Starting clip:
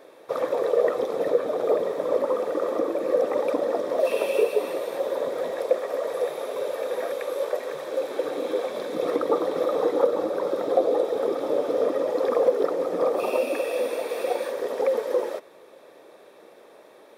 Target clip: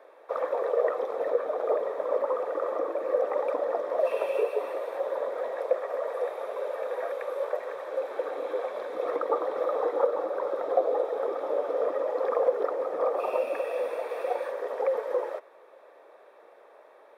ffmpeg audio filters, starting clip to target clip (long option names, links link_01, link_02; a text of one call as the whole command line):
ffmpeg -i in.wav -filter_complex "[0:a]acrossover=split=460 2100:gain=0.0708 1 0.178[link_01][link_02][link_03];[link_01][link_02][link_03]amix=inputs=3:normalize=0" out.wav